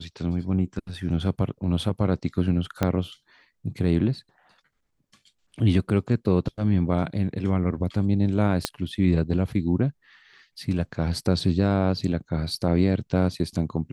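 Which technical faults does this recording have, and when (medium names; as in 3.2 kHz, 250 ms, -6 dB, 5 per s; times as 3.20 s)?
2.83 s: pop -9 dBFS
8.65 s: pop -7 dBFS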